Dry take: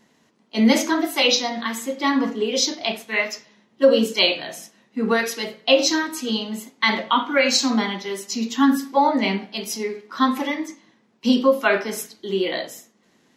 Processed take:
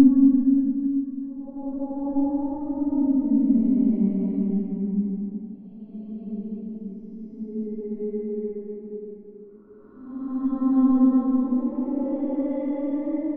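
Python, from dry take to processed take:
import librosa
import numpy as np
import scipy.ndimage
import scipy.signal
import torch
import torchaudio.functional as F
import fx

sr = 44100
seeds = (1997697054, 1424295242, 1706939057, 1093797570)

y = np.where(x < 0.0, 10.0 ** (-3.0 / 20.0) * x, x)
y = fx.filter_sweep_lowpass(y, sr, from_hz=240.0, to_hz=1200.0, start_s=9.57, end_s=11.87, q=1.9)
y = fx.paulstretch(y, sr, seeds[0], factor=7.0, window_s=0.25, from_s=8.68)
y = y * 10.0 ** (-1.5 / 20.0)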